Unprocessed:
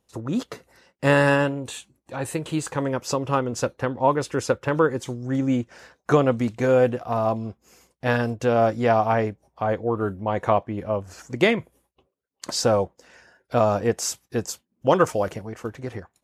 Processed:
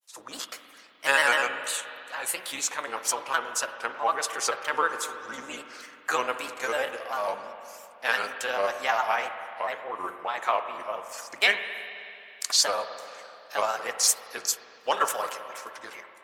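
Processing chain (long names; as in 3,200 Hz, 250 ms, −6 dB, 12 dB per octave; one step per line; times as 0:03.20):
sub-octave generator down 2 octaves, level +1 dB
high-pass filter 1,200 Hz 12 dB per octave
high-shelf EQ 8,100 Hz +11.5 dB
granular cloud, spray 15 ms, pitch spread up and down by 3 semitones
spring reverb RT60 2.8 s, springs 42/53 ms, chirp 80 ms, DRR 8 dB
level +3.5 dB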